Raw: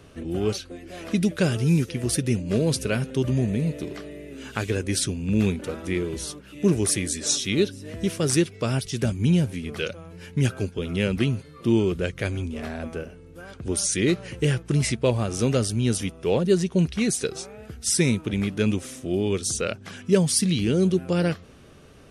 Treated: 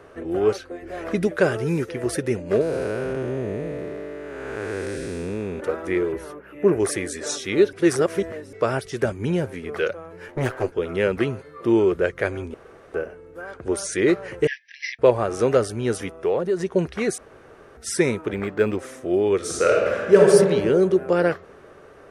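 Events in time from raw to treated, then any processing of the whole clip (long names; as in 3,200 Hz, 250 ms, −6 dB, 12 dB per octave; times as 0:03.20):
0:00.82–0:01.27: low-shelf EQ 110 Hz +11.5 dB
0:02.61–0:05.60: spectrum smeared in time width 451 ms
0:06.12–0:06.80: flat-topped bell 5,600 Hz −12.5 dB
0:07.73–0:08.53: reverse
0:10.28–0:10.72: lower of the sound and its delayed copy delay 8.1 ms
0:12.54–0:12.94: fill with room tone
0:14.47–0:14.99: linear-phase brick-wall band-pass 1,600–6,000 Hz
0:16.10–0:16.60: downward compressor, threshold −23 dBFS
0:17.18–0:17.77: fill with room tone
0:18.33–0:18.79: linearly interpolated sample-rate reduction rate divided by 4×
0:19.36–0:20.28: thrown reverb, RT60 1.8 s, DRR −3 dB
whole clip: flat-topped bell 830 Hz +13.5 dB 2.9 octaves; level −6 dB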